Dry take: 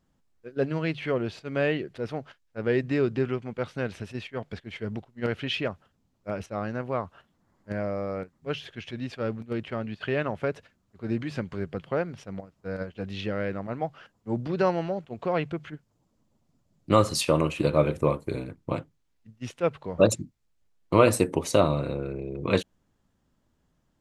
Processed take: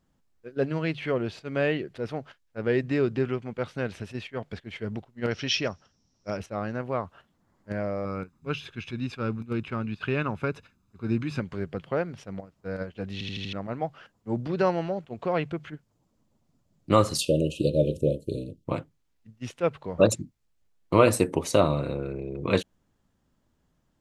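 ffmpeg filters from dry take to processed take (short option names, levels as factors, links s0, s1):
-filter_complex "[0:a]asettb=1/sr,asplit=3[s0][s1][s2];[s0]atrim=end=5.314[s3];[s1]atrim=start=5.31:end=6.37,asetpts=PTS-STARTPTS,afade=t=in:d=0.004:c=qsin,afade=t=out:st=1.056:d=0.004:c=qsin,lowpass=f=5600:t=q:w=15[s4];[s2]atrim=start=6.366[s5];[s3][s4]acrossfade=d=0.004:c1=hsin:c2=qsin[s6];[s6][s5]acrossfade=d=0.004:c1=qsin:c2=hsin,asettb=1/sr,asplit=3[s7][s8][s9];[s7]atrim=end=8.054[s10];[s8]atrim=start=8.05:end=11.4,asetpts=PTS-STARTPTS,afade=t=in:d=0.004:c=qsin,afade=t=out:st=3.346:d=0.004:c=qsin,aecho=1:1:0.8:0.56,atrim=end_sample=147735[s11];[s9]atrim=start=11.396[s12];[s10][s11]acrossfade=d=0.004:c1=hsin:c2=qsin[s13];[s13][s12]acrossfade=d=0.004:c1=qsin:c2=hsin,asplit=3[s14][s15][s16];[s14]afade=t=out:st=17.17:d=0.02[s17];[s15]asuperstop=centerf=1300:order=20:qfactor=0.62,afade=t=in:st=17.17:d=0.02,afade=t=out:st=18.64:d=0.02[s18];[s16]afade=t=in:st=18.64:d=0.02[s19];[s17][s18][s19]amix=inputs=3:normalize=0,asplit=6[s20][s21][s22][s23][s24][s25];[s20]atrim=end=13.212[s26];[s21]atrim=start=13.128:end=13.212[s27];[s22]atrim=start=13.128:end=13.212[s28];[s23]atrim=start=13.128:end=13.212[s29];[s24]atrim=start=13.128:end=13.212[s30];[s25]atrim=start=13.528[s31];[s26][s27]acrossfade=d=0.004:c1=hsin:c2=hsin[s32];[s32][s28]acrossfade=d=0.004:c1=hsin:c2=hsin[s33];[s33][s29]acrossfade=d=0.004:c1=hsin:c2=hsin[s34];[s34][s30]acrossfade=d=0.004:c1=hsin:c2=hsin[s35];[s35][s31]acrossfade=d=0.004:c1=hsin:c2=hsin"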